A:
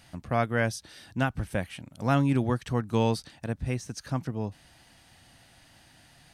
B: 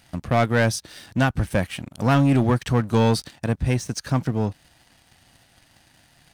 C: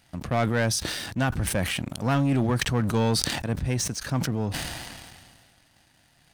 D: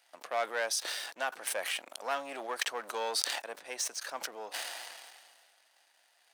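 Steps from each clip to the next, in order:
waveshaping leveller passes 2; trim +2 dB
decay stretcher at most 31 dB/s; trim -5.5 dB
high-pass 510 Hz 24 dB/octave; trim -5 dB

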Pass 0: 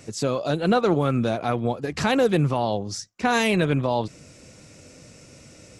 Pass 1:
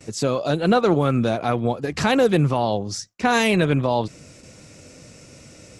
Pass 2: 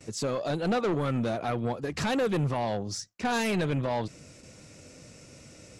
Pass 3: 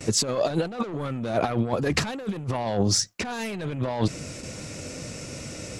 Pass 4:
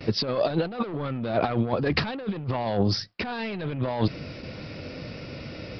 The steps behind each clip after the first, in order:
gate with hold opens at -39 dBFS; trim +2.5 dB
saturation -17.5 dBFS, distortion -11 dB; trim -5 dB
compressor with a negative ratio -33 dBFS, ratio -0.5; trim +8 dB
resampled via 11.025 kHz

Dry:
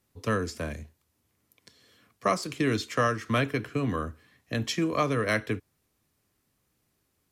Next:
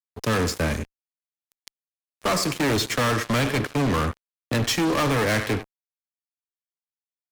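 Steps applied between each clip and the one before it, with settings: feedback delay 96 ms, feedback 38%, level -18 dB; fuzz box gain 36 dB, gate -43 dBFS; trim -6.5 dB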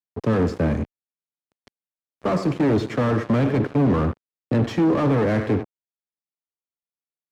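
waveshaping leveller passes 2; band-pass filter 230 Hz, Q 0.52; trim +4 dB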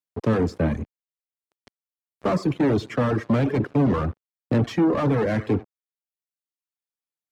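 reverb removal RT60 0.88 s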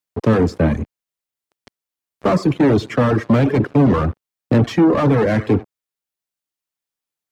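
de-esser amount 85%; trim +6.5 dB

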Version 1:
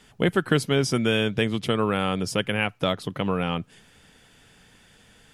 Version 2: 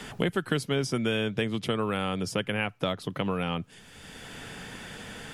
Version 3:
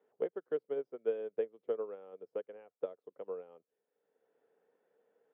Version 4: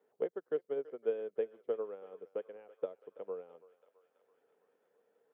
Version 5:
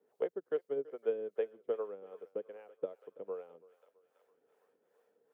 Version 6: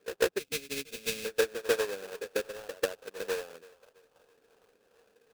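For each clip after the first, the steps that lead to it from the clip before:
three bands compressed up and down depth 70%; trim -5 dB
ladder band-pass 510 Hz, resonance 65%; upward expansion 2.5:1, over -45 dBFS; trim +3 dB
thinning echo 331 ms, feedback 77%, high-pass 650 Hz, level -16.5 dB
harmonic tremolo 2.5 Hz, depth 70%, crossover 450 Hz; trim +4 dB
sample-rate reducer 2.1 kHz, jitter 20%; time-frequency box 0.39–1.39 s, 300–2000 Hz -14 dB; pre-echo 143 ms -12 dB; trim +7.5 dB

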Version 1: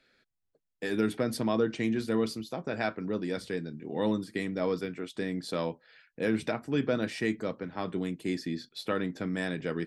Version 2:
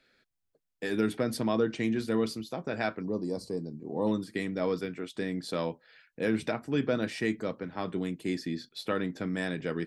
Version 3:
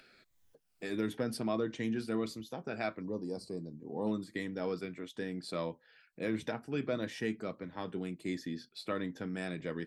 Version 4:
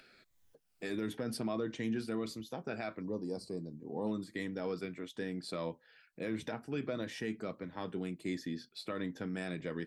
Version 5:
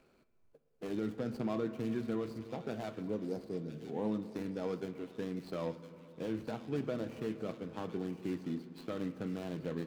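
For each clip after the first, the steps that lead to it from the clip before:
time-frequency box 3.02–4.07 s, 1.2–3.9 kHz -20 dB
drifting ripple filter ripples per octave 1.1, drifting -1.5 Hz, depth 6 dB; upward compressor, threshold -46 dBFS; trim -6 dB
peak limiter -27 dBFS, peak gain reduction 6 dB
median filter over 25 samples; feedback echo behind a high-pass 1010 ms, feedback 35%, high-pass 2.2 kHz, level -7 dB; reverberation RT60 3.3 s, pre-delay 3 ms, DRR 11 dB; trim +1 dB

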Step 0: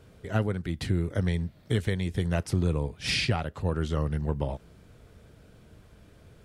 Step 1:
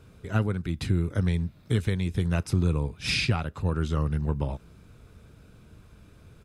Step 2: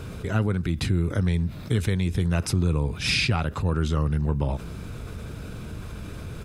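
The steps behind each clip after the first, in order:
comb 0.8 ms, depth 34%
level flattener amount 50%

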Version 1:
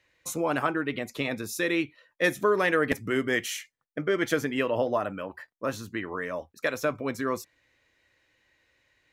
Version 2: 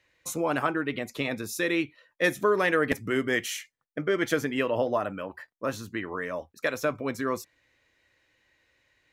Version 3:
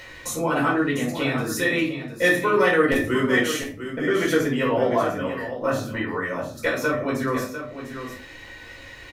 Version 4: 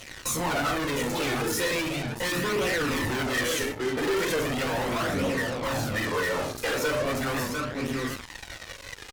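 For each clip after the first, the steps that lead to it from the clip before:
no audible change
upward compressor, threshold -30 dBFS; delay 699 ms -10 dB; simulated room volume 290 m³, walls furnished, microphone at 4.7 m; trim -3 dB
fuzz box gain 36 dB, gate -39 dBFS; flange 0.38 Hz, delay 0.3 ms, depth 2.3 ms, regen +36%; warped record 78 rpm, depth 100 cents; trim -8 dB

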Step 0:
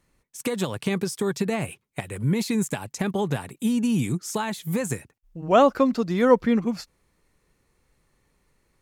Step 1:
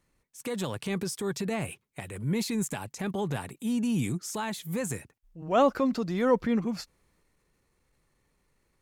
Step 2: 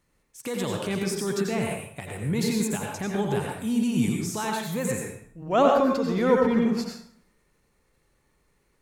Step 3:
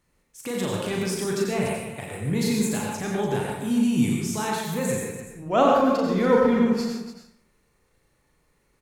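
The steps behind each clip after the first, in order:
transient shaper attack -5 dB, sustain +3 dB; trim -4.5 dB
plate-style reverb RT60 0.62 s, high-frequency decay 0.75×, pre-delay 75 ms, DRR 0 dB; trim +1.5 dB
loudspeakers at several distances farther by 13 m -4 dB, 100 m -11 dB

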